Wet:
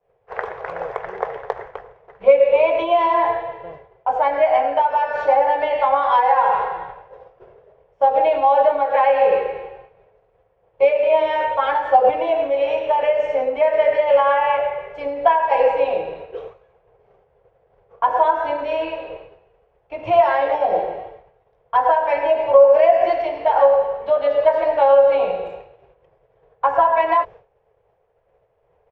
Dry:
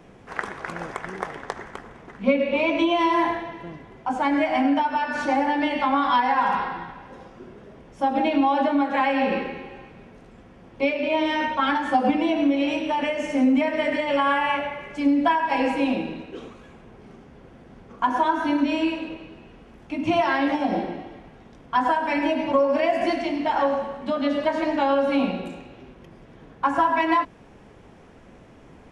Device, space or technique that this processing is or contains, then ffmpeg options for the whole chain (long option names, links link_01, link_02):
hearing-loss simulation: -af "lowpass=2800,agate=range=-33dB:threshold=-36dB:ratio=3:detection=peak,firequalizer=gain_entry='entry(120,0);entry(250,-24);entry(450,12);entry(1300,0)':delay=0.05:min_phase=1"